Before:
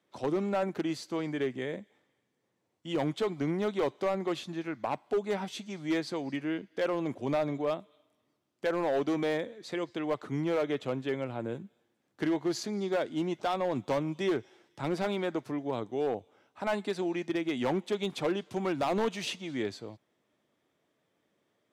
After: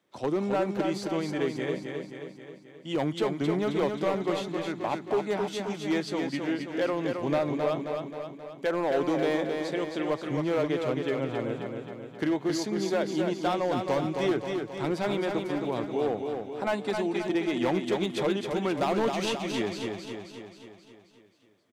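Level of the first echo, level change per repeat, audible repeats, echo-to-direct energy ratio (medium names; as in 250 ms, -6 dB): -5.0 dB, -5.0 dB, 7, -3.5 dB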